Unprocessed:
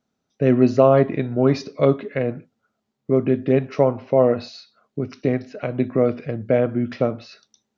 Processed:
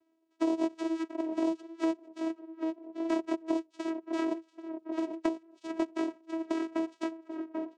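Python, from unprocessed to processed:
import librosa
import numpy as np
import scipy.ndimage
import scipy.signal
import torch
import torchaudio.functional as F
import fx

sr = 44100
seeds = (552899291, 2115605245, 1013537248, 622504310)

y = fx.bit_reversed(x, sr, seeds[0], block=64)
y = fx.noise_reduce_blind(y, sr, reduce_db=12)
y = scipy.signal.sosfilt(scipy.signal.butter(4, 4400.0, 'lowpass', fs=sr, output='sos'), y)
y = fx.dereverb_blind(y, sr, rt60_s=0.82)
y = fx.rotary_switch(y, sr, hz=0.9, then_hz=6.7, switch_at_s=2.33)
y = fx.env_flanger(y, sr, rest_ms=11.1, full_db=-20.5)
y = fx.vocoder(y, sr, bands=4, carrier='saw', carrier_hz=325.0)
y = fx.echo_tape(y, sr, ms=788, feedback_pct=42, wet_db=-16.0, lp_hz=1200.0, drive_db=5.0, wow_cents=30)
y = fx.band_squash(y, sr, depth_pct=100)
y = F.gain(torch.from_numpy(y), -4.0).numpy()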